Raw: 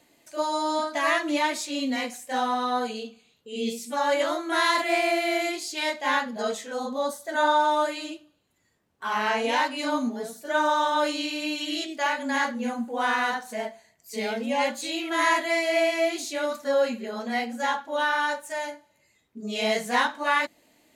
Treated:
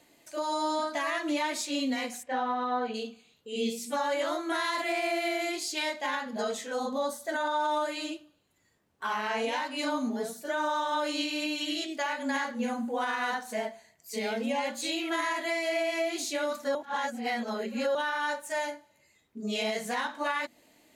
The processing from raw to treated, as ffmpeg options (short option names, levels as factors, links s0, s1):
-filter_complex "[0:a]asplit=3[s0][s1][s2];[s0]afade=t=out:st=2.22:d=0.02[s3];[s1]lowpass=2500,afade=t=in:st=2.22:d=0.02,afade=t=out:st=2.93:d=0.02[s4];[s2]afade=t=in:st=2.93:d=0.02[s5];[s3][s4][s5]amix=inputs=3:normalize=0,asplit=3[s6][s7][s8];[s6]atrim=end=16.752[s9];[s7]atrim=start=16.748:end=17.952,asetpts=PTS-STARTPTS,areverse[s10];[s8]atrim=start=17.948[s11];[s9][s10]acrossfade=d=0.004:c1=hsin:c2=hsin[s12];[s12][s11]acrossfade=d=0.004:c1=hsin:c2=hsin,bandreject=f=60:t=h:w=6,bandreject=f=120:t=h:w=6,bandreject=f=180:t=h:w=6,bandreject=f=240:t=h:w=6,alimiter=limit=0.0841:level=0:latency=1:release=177"